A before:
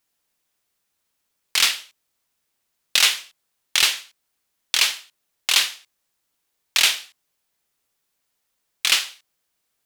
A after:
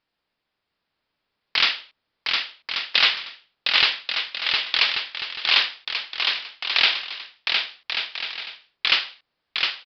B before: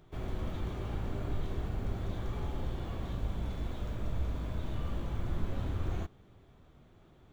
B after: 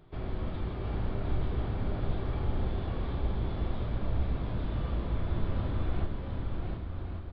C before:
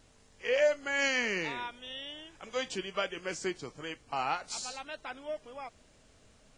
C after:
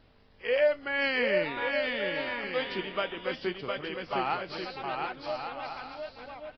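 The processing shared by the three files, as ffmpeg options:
-filter_complex "[0:a]highshelf=f=3.7k:g=-5.5,asplit=2[a][b];[b]aecho=0:1:710|1136|1392|1545|1637:0.631|0.398|0.251|0.158|0.1[c];[a][c]amix=inputs=2:normalize=0,aresample=11025,aresample=44100,volume=2dB"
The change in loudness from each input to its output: -2.5, +3.5, +3.0 LU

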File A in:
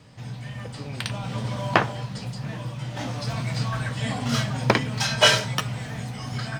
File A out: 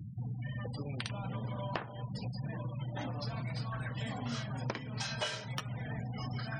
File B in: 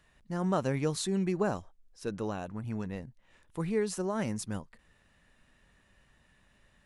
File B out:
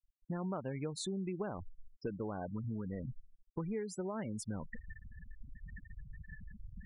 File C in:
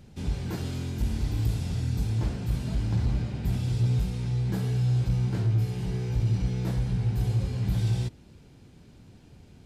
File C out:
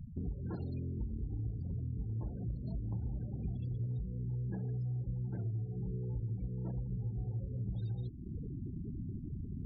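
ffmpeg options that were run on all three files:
-af "areverse,acompressor=mode=upward:threshold=-32dB:ratio=2.5,areverse,afftfilt=real='re*gte(hypot(re,im),0.02)':imag='im*gte(hypot(re,im),0.02)':win_size=1024:overlap=0.75,acompressor=threshold=-40dB:ratio=6,volume=3.5dB"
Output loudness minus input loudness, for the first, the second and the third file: -13.5, -7.5, -11.5 LU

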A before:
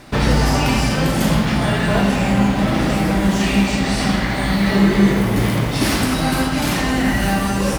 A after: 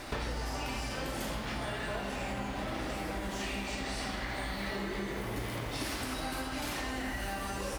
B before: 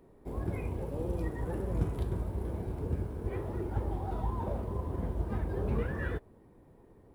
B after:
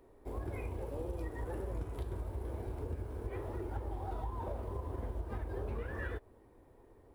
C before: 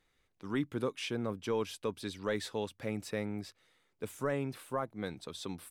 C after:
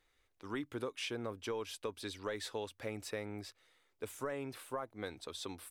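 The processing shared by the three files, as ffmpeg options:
-af "equalizer=f=170:t=o:w=0.91:g=-13,acompressor=threshold=-35dB:ratio=6"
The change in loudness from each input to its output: -19.0, -6.0, -5.0 LU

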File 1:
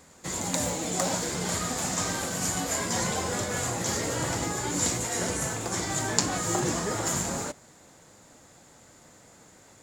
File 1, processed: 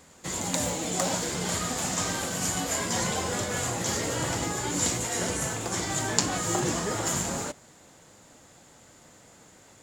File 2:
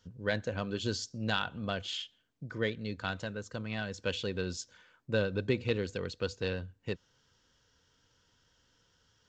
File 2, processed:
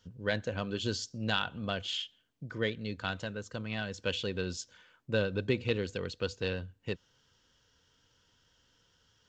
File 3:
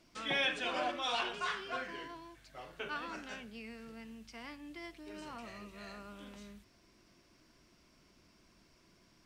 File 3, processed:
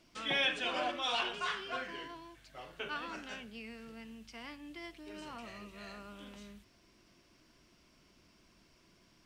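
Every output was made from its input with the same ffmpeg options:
-af "equalizer=f=3k:w=3.2:g=3.5"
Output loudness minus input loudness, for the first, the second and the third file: 0.0, +0.5, +1.5 LU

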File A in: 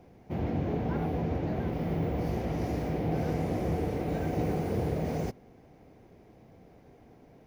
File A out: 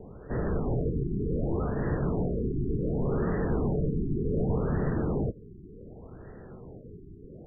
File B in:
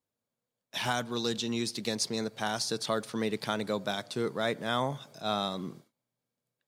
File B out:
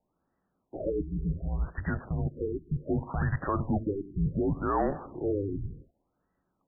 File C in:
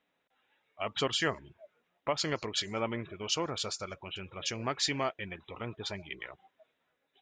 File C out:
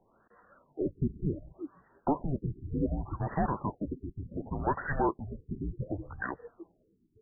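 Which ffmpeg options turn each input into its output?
-filter_complex "[0:a]asplit=2[a][b];[b]acompressor=threshold=-44dB:ratio=6,volume=-1dB[c];[a][c]amix=inputs=2:normalize=0,asplit=2[d][e];[e]highpass=f=720:p=1,volume=21dB,asoftclip=type=tanh:threshold=-13dB[f];[d][f]amix=inputs=2:normalize=0,lowpass=f=2.2k:p=1,volume=-6dB,highpass=f=150:t=q:w=0.5412,highpass=f=150:t=q:w=1.307,lowpass=f=3.1k:t=q:w=0.5176,lowpass=f=3.1k:t=q:w=0.7071,lowpass=f=3.1k:t=q:w=1.932,afreqshift=-300,afftfilt=real='re*lt(b*sr/1024,410*pow(2000/410,0.5+0.5*sin(2*PI*0.67*pts/sr)))':imag='im*lt(b*sr/1024,410*pow(2000/410,0.5+0.5*sin(2*PI*0.67*pts/sr)))':win_size=1024:overlap=0.75,volume=-3dB"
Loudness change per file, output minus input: +2.0, +0.5, 0.0 LU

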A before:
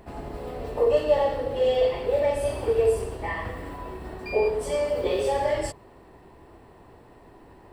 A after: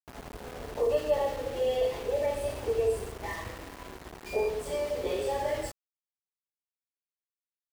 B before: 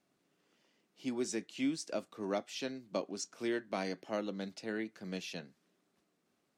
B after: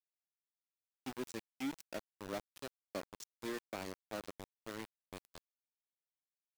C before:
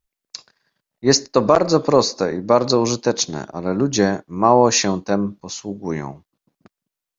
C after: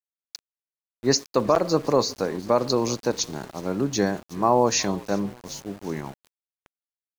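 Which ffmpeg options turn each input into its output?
-filter_complex "[0:a]asplit=5[a][b][c][d][e];[b]adelay=367,afreqshift=-59,volume=-22dB[f];[c]adelay=734,afreqshift=-118,volume=-26.6dB[g];[d]adelay=1101,afreqshift=-177,volume=-31.2dB[h];[e]adelay=1468,afreqshift=-236,volume=-35.7dB[i];[a][f][g][h][i]amix=inputs=5:normalize=0,aeval=exprs='val(0)*gte(abs(val(0)),0.0211)':c=same,volume=-6dB"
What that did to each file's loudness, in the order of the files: -5.5, -7.5, -6.0 LU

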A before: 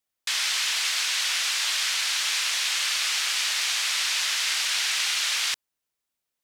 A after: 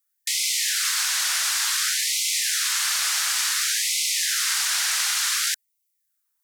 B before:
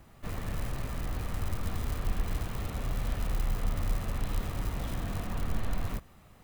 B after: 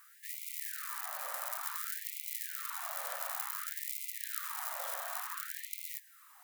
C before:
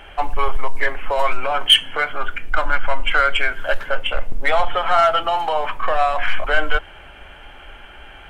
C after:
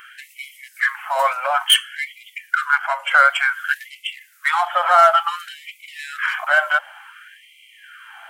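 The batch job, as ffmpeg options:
-af "highshelf=f=2k:t=q:w=1.5:g=-8.5,crystalizer=i=6:c=0,afftfilt=real='re*gte(b*sr/1024,490*pow(2000/490,0.5+0.5*sin(2*PI*0.56*pts/sr)))':imag='im*gte(b*sr/1024,490*pow(2000/490,0.5+0.5*sin(2*PI*0.56*pts/sr)))':win_size=1024:overlap=0.75,volume=-1.5dB"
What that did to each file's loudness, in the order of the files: +2.0, -2.0, +2.0 LU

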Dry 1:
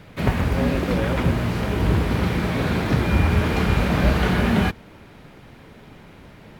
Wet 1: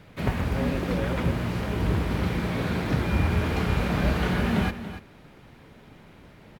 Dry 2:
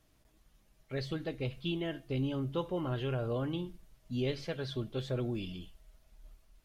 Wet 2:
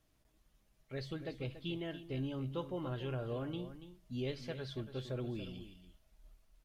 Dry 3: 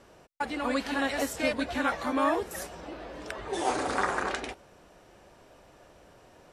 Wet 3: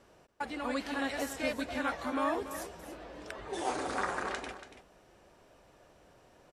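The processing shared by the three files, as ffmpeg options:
-af "aecho=1:1:284:0.251,volume=-5.5dB"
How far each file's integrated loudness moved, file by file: -5.0, -5.5, -5.5 LU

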